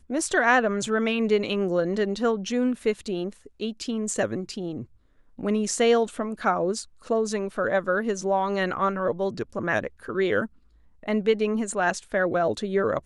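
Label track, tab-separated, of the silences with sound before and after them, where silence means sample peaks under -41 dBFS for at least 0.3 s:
4.850000	5.390000	silence
10.470000	11.030000	silence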